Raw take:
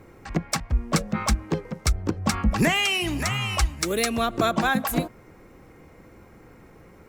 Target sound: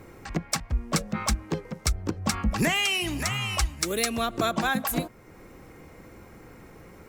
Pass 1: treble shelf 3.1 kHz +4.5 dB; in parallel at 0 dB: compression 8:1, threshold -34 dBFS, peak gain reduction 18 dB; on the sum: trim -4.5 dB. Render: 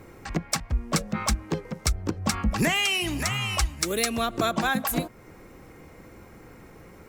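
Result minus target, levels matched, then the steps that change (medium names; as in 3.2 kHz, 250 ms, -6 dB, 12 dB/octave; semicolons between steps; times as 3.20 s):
compression: peak gain reduction -7.5 dB
change: compression 8:1, threshold -42.5 dBFS, peak gain reduction 25.5 dB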